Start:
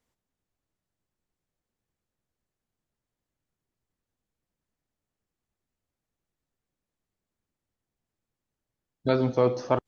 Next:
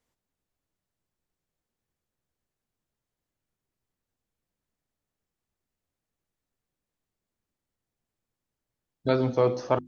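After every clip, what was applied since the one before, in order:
mains-hum notches 50/100/150/200/250/300/350 Hz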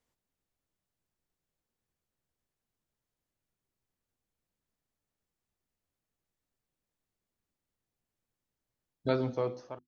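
fade-out on the ending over 1.01 s
level −2.5 dB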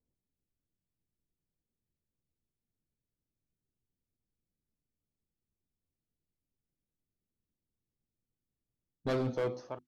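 hard clipping −28.5 dBFS, distortion −8 dB
low-pass that shuts in the quiet parts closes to 330 Hz, open at −39.5 dBFS
level +1.5 dB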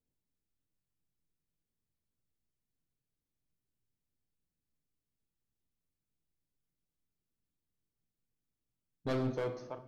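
rectangular room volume 400 cubic metres, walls mixed, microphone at 0.42 metres
level −2.5 dB

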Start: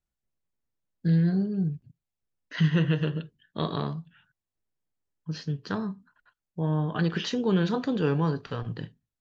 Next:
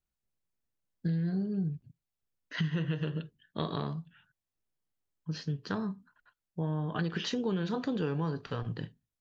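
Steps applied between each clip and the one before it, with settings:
downward compressor, threshold −26 dBFS, peak gain reduction 8.5 dB
level −2 dB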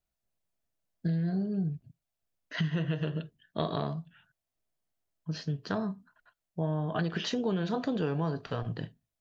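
parametric band 660 Hz +10.5 dB 0.27 octaves
level +1 dB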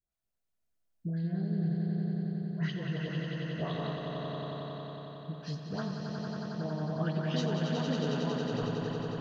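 all-pass dispersion highs, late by 121 ms, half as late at 1,100 Hz
on a send: echo that builds up and dies away 91 ms, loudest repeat 5, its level −6.5 dB
on the sum: level −5.5 dB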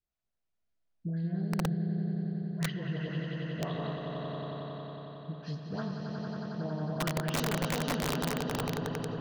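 high-frequency loss of the air 100 metres
wrap-around overflow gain 24 dB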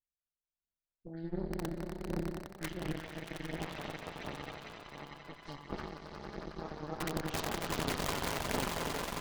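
echo that builds up and dies away 90 ms, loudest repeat 8, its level −12 dB
phase shifter 1.4 Hz, delay 2.7 ms, feedback 34%
harmonic generator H 3 −11 dB, 6 −18 dB, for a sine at −16.5 dBFS
level +1 dB

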